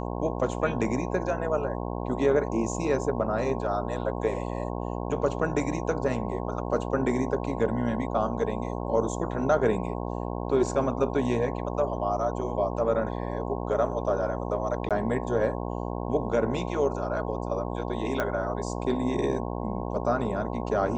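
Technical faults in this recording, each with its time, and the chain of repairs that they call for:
buzz 60 Hz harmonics 18 -32 dBFS
14.89–14.91 gap 17 ms
18.2 pop -14 dBFS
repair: de-click; de-hum 60 Hz, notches 18; interpolate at 14.89, 17 ms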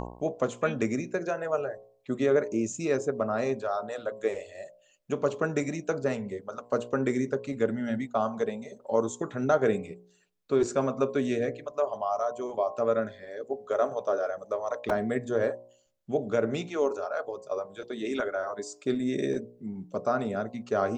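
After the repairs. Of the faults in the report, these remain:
none

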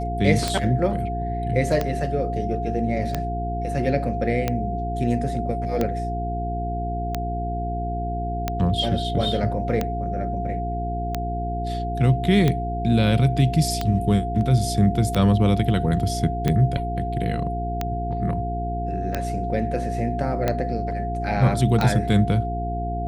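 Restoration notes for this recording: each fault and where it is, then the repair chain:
hum 60 Hz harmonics 7 -28 dBFS
tick 45 rpm -9 dBFS
tone 700 Hz -28 dBFS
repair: de-click; notch 700 Hz, Q 30; de-hum 60 Hz, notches 7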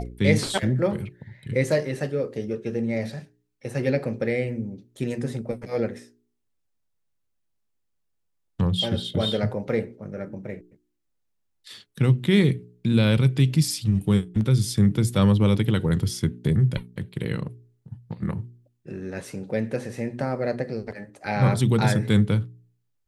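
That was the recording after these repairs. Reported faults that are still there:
none

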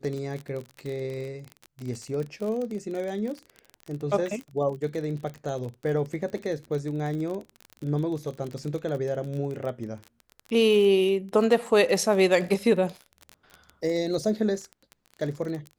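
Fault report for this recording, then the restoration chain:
crackle 34/s -31 dBFS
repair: de-click

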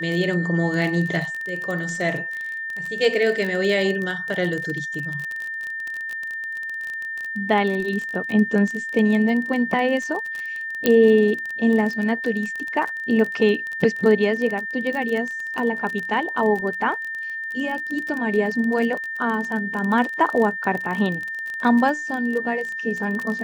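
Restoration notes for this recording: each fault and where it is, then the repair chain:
crackle 27/s -25 dBFS
tone 1800 Hz -27 dBFS
10.86 pop -4 dBFS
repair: de-click; notch 1800 Hz, Q 30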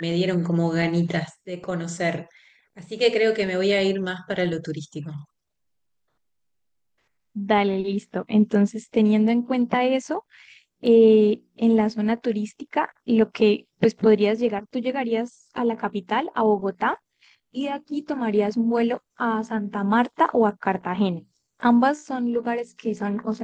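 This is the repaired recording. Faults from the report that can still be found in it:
10.86 pop

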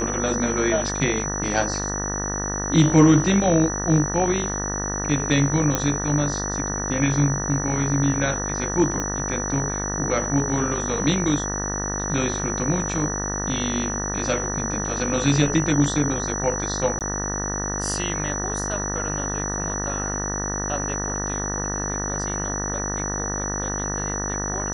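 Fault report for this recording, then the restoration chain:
buzz 50 Hz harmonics 38 -29 dBFS
tone 5900 Hz -28 dBFS
5.75 pop -6 dBFS
9 pop -13 dBFS
16.99–17.01 gap 18 ms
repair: de-click; de-hum 50 Hz, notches 38; notch 5900 Hz, Q 30; interpolate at 16.99, 18 ms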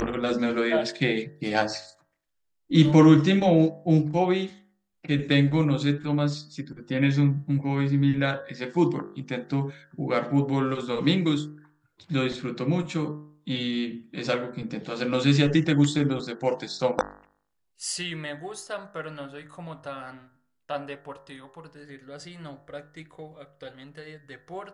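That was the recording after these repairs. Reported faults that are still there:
none

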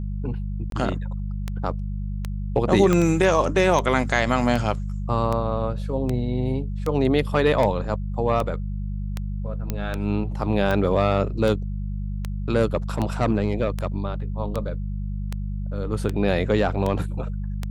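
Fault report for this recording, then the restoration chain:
hum 50 Hz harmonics 4 -28 dBFS
tick 78 rpm -13 dBFS
0.7–0.72 gap 22 ms
2.93 pop -8 dBFS
9.7 pop -12 dBFS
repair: de-click; de-hum 50 Hz, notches 4; interpolate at 0.7, 22 ms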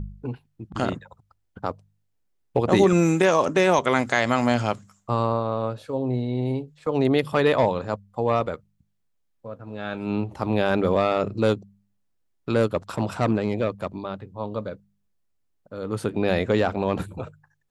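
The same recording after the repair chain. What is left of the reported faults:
2.93 pop

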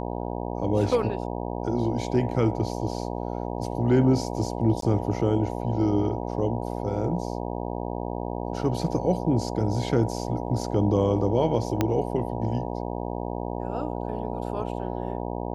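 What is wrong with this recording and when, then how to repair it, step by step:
buzz 60 Hz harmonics 16 -31 dBFS
4.81–4.82 gap 13 ms
11.81 pop -9 dBFS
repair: de-click; de-hum 60 Hz, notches 16; interpolate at 4.81, 13 ms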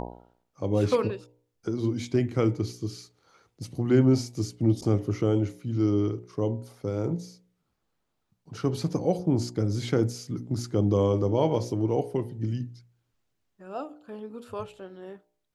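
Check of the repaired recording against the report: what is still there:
11.81 pop

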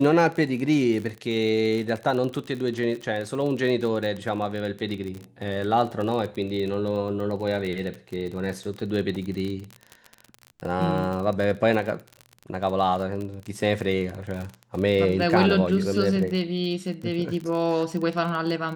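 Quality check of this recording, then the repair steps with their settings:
crackle 36/s -29 dBFS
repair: de-click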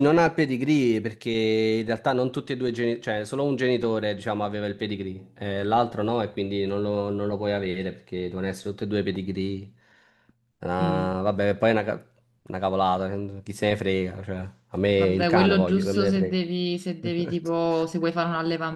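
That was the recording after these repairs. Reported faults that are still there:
none

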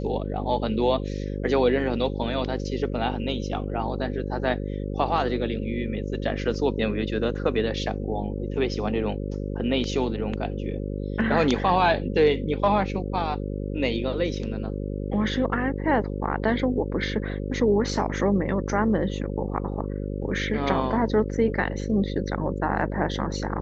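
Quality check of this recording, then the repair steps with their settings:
buzz 50 Hz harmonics 11 -30 dBFS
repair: de-hum 50 Hz, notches 11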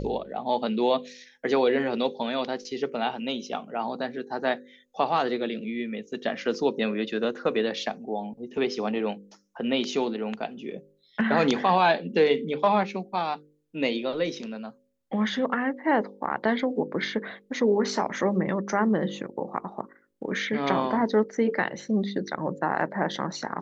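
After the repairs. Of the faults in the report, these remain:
none

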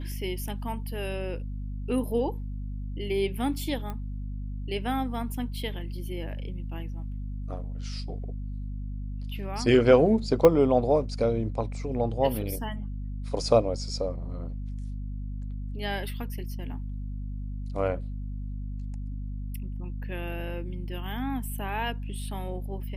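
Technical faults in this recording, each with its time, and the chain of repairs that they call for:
hum 50 Hz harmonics 5 -34 dBFS
3.9 pop -23 dBFS
10.45 pop -8 dBFS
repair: de-click; de-hum 50 Hz, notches 5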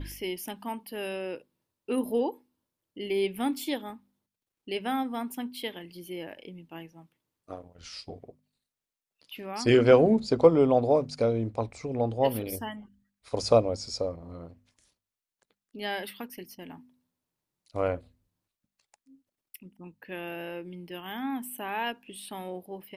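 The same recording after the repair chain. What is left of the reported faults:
10.45 pop

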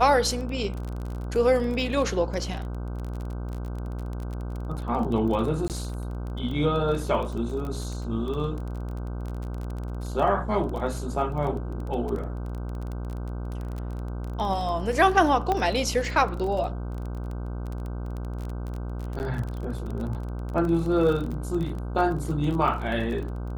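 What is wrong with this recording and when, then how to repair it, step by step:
buzz 60 Hz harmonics 26 -32 dBFS
crackle 24/s -31 dBFS
5.68–5.7 gap 18 ms
15.52 pop -13 dBFS
19.19–19.2 gap 9.8 ms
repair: de-click; de-hum 60 Hz, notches 26; interpolate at 5.68, 18 ms; interpolate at 19.19, 9.8 ms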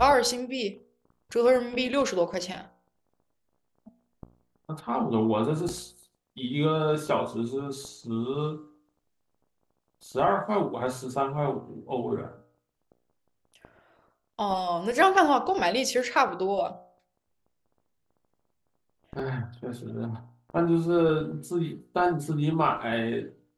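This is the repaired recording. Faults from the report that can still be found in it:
none

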